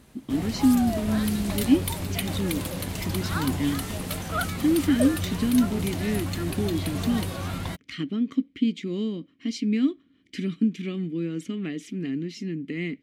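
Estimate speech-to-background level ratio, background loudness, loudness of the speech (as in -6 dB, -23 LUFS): 3.0 dB, -30.5 LUFS, -27.5 LUFS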